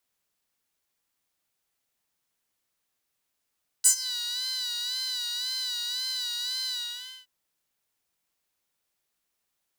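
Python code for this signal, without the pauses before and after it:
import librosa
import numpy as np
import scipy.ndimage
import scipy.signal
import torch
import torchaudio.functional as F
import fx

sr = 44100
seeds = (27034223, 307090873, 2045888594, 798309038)

y = fx.sub_patch_vibrato(sr, seeds[0], note=83, wave='saw', wave2='triangle', interval_st=7, detune_cents=30, level2_db=-1.0, sub_db=-19.0, noise_db=-19, kind='highpass', cutoff_hz=3100.0, q=5.7, env_oct=1.5, env_decay_s=0.22, env_sustain_pct=25, attack_ms=19.0, decay_s=0.09, sustain_db=-21, release_s=0.57, note_s=2.85, lfo_hz=1.9, vibrato_cents=63)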